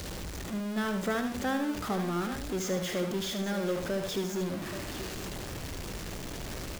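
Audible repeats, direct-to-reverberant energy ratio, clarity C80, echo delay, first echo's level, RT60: 3, no reverb audible, no reverb audible, 75 ms, −8.0 dB, no reverb audible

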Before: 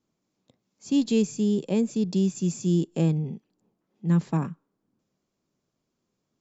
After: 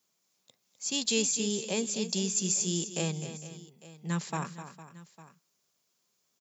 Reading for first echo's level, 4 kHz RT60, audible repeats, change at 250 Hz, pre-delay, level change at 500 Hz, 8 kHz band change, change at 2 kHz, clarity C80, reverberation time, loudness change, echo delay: −11.0 dB, no reverb audible, 3, −10.5 dB, no reverb audible, −5.5 dB, can't be measured, +5.0 dB, no reverb audible, no reverb audible, −4.5 dB, 254 ms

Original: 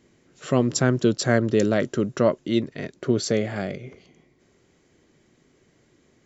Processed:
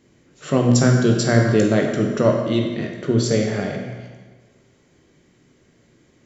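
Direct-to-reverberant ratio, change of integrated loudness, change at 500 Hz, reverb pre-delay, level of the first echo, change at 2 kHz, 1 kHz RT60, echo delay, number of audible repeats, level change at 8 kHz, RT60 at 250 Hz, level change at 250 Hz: 1.0 dB, +4.5 dB, +3.5 dB, 16 ms, no echo audible, +3.5 dB, 1.4 s, no echo audible, no echo audible, can't be measured, 1.3 s, +4.5 dB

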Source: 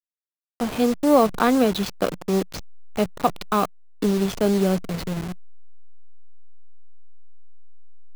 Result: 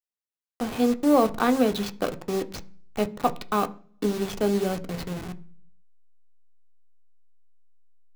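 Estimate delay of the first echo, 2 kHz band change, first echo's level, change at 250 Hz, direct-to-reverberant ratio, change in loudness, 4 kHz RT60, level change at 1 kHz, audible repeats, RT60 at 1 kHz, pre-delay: no echo audible, −3.0 dB, no echo audible, −3.5 dB, 8.0 dB, −3.5 dB, 0.50 s, −3.0 dB, no echo audible, 0.40 s, 3 ms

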